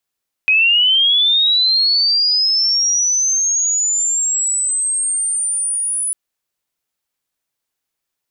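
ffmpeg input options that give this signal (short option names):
-f lavfi -i "aevalsrc='pow(10,(-9.5-7.5*t/5.65)/20)*sin(2*PI*(2500*t+7500*t*t/(2*5.65)))':d=5.65:s=44100"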